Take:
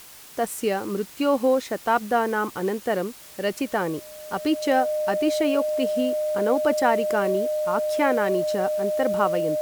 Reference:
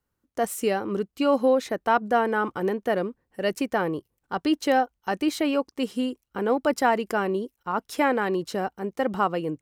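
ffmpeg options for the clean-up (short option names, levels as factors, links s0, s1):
-af "bandreject=f=610:w=30,afwtdn=0.0056"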